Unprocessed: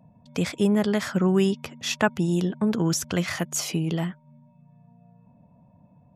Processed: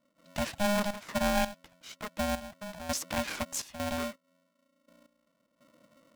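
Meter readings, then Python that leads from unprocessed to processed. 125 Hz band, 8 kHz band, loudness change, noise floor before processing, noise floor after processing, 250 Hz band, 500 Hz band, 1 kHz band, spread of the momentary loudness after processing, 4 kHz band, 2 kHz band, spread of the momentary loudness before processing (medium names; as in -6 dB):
-16.0 dB, -6.5 dB, -8.0 dB, -58 dBFS, -76 dBFS, -12.0 dB, -7.0 dB, -0.5 dB, 13 LU, -5.5 dB, -5.0 dB, 8 LU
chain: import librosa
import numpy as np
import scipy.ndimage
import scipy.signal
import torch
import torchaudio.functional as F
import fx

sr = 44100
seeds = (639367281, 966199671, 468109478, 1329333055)

y = fx.step_gate(x, sr, bpm=83, pattern='.xxxx.xx....x..', floor_db=-12.0, edge_ms=4.5)
y = y * np.sign(np.sin(2.0 * np.pi * 410.0 * np.arange(len(y)) / sr))
y = y * librosa.db_to_amplitude(-7.0)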